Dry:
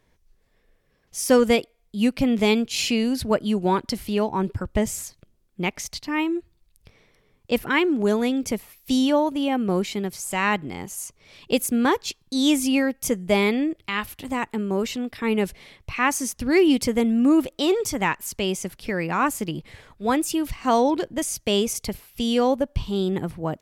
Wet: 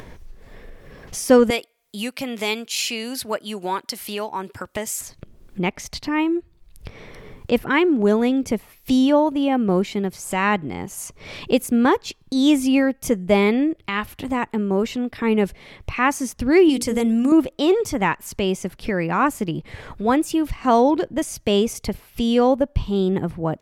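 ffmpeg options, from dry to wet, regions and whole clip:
-filter_complex "[0:a]asettb=1/sr,asplit=3[s0][s1][s2];[s0]atrim=end=1.504[s3];[s1]atrim=start=1.5:end=5.01,asetpts=PTS-STARTPTS,afade=t=in:d=0.004:c=qsin,afade=t=out:st=3.506:d=0.004:c=qsin,highpass=f=1300:p=1,highshelf=f=6700:g=11.5[s4];[s2]atrim=start=5.006[s5];[s3][s4]acrossfade=d=0.004:c1=hsin:c2=qsin[s6];[s6][s5]acrossfade=d=0.004:c1=qsin:c2=hsin,asettb=1/sr,asplit=3[s7][s8][s9];[s7]atrim=end=16.694[s10];[s8]atrim=start=16.69:end=17.32,asetpts=PTS-STARTPTS,afade=t=in:d=0.004:c=qsin,afade=t=out:st=0.626:d=0.004:c=qsin,equalizer=f=8800:w=0.46:g=14,bandreject=f=60:t=h:w=6,bandreject=f=120:t=h:w=6,bandreject=f=180:t=h:w=6,bandreject=f=240:t=h:w=6,bandreject=f=300:t=h:w=6,bandreject=f=360:t=h:w=6,bandreject=f=420:t=h:w=6,bandreject=f=480:t=h:w=6,acompressor=threshold=0.112:ratio=4:attack=3.2:release=140:knee=1:detection=peak[s11];[s9]atrim=start=17.316[s12];[s10][s11]acrossfade=d=0.004:c1=hsin:c2=qsin[s13];[s13][s12]acrossfade=d=0.004:c1=qsin:c2=hsin,highshelf=f=2900:g=-9,acompressor=mode=upward:threshold=0.0447:ratio=2.5,volume=1.58"

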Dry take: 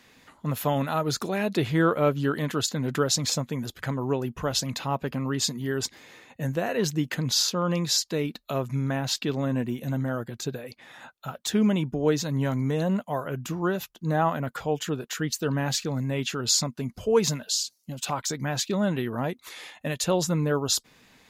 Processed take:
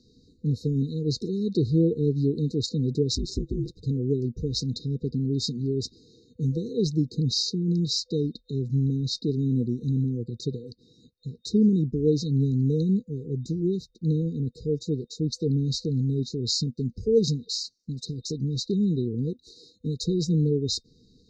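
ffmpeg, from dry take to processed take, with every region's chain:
-filter_complex "[0:a]asettb=1/sr,asplit=3[s0][s1][s2];[s0]atrim=end=3.154[s3];[s1]atrim=start=3.15:end=3.78,asetpts=PTS-STARTPTS,afade=t=in:d=0.004:c=qsin,afade=t=out:st=0.626:d=0.004:c=qsin,equalizer=f=3300:t=o:w=2.3:g=-7,aecho=1:1:4.4:0.92,atrim=end_sample=27783,aeval=exprs='val(0)*sin(2*PI*96*n/s)':c=same[s4];[s2]atrim=start=3.776[s5];[s3][s4]acrossfade=d=0.004:c1=hsin:c2=qsin[s6];[s6][s5]acrossfade=d=0.004:c1=qsin:c2=hsin,afftfilt=real='re*(1-between(b*sr/4096,500,3700))':imag='im*(1-between(b*sr/4096,500,3700))':win_size=4096:overlap=0.75,lowpass=f=5300:w=0.5412,lowpass=f=5300:w=1.3066,lowshelf=f=130:g=9"

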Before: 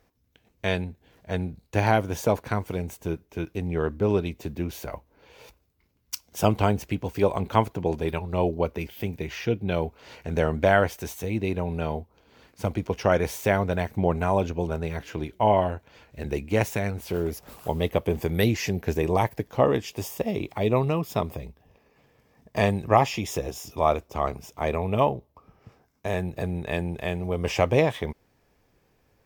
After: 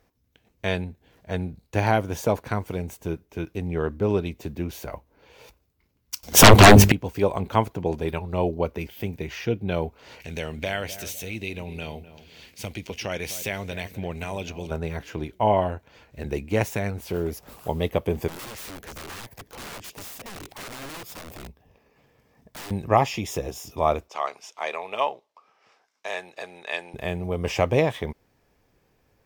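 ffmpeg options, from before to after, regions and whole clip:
-filter_complex "[0:a]asettb=1/sr,asplit=3[s0][s1][s2];[s0]atrim=end=6.234[s3];[s1]atrim=start=6.23:end=6.92,asetpts=PTS-STARTPTS,afade=t=in:d=0.004:c=qsin,afade=t=out:st=0.686:d=0.004:c=qsin,bandreject=f=50:t=h:w=6,bandreject=f=100:t=h:w=6,bandreject=f=150:t=h:w=6,bandreject=f=200:t=h:w=6,bandreject=f=250:t=h:w=6,bandreject=f=300:t=h:w=6,bandreject=f=350:t=h:w=6,bandreject=f=400:t=h:w=6,bandreject=f=450:t=h:w=6,aeval=exprs='0.596*sin(PI/2*8.91*val(0)/0.596)':c=same[s4];[s2]atrim=start=6.916[s5];[s3][s4]acrossfade=d=0.004:c1=hsin:c2=qsin[s6];[s6][s5]acrossfade=d=0.004:c1=qsin:c2=hsin,asettb=1/sr,asplit=3[s7][s8][s9];[s7]atrim=end=10.204[s10];[s8]atrim=start=10.2:end=14.71,asetpts=PTS-STARTPTS,afade=t=in:d=0.004:c=qsin,afade=t=out:st=4.506:d=0.004:c=qsin,highshelf=f=1800:t=q:w=1.5:g=10.5,acompressor=threshold=0.00891:ratio=1.5:attack=3.2:release=140:knee=1:detection=peak,asplit=2[s11][s12];[s12]adelay=253,lowpass=f=1400:p=1,volume=0.224,asplit=2[s13][s14];[s14]adelay=253,lowpass=f=1400:p=1,volume=0.33,asplit=2[s15][s16];[s16]adelay=253,lowpass=f=1400:p=1,volume=0.33[s17];[s11][s13][s15][s17]amix=inputs=4:normalize=0,atrim=end_sample=198891[s18];[s9]atrim=start=14.706[s19];[s10][s18]acrossfade=d=0.004:c1=hsin:c2=qsin[s20];[s20][s19]acrossfade=d=0.004:c1=qsin:c2=hsin,asettb=1/sr,asplit=3[s21][s22][s23];[s21]atrim=end=18.284[s24];[s22]atrim=start=18.28:end=22.71,asetpts=PTS-STARTPTS,afade=t=in:d=0.004:c=qsin,afade=t=out:st=4.426:d=0.004:c=qsin,acompressor=threshold=0.0282:ratio=4:attack=3.2:release=140:knee=1:detection=peak,aeval=exprs='(mod(47.3*val(0)+1,2)-1)/47.3':c=same[s25];[s23]atrim=start=22.706[s26];[s24][s25]acrossfade=d=0.004:c1=hsin:c2=qsin[s27];[s27][s26]acrossfade=d=0.004:c1=qsin:c2=hsin,asettb=1/sr,asplit=3[s28][s29][s30];[s28]atrim=end=24.084[s31];[s29]atrim=start=24.08:end=26.94,asetpts=PTS-STARTPTS,afade=t=in:d=0.004:c=qsin,afade=t=out:st=2.856:d=0.004:c=qsin,highpass=700,lowpass=5600,highshelf=f=2600:g=9[s32];[s30]atrim=start=26.936[s33];[s31][s32]acrossfade=d=0.004:c1=hsin:c2=qsin[s34];[s34][s33]acrossfade=d=0.004:c1=qsin:c2=hsin"

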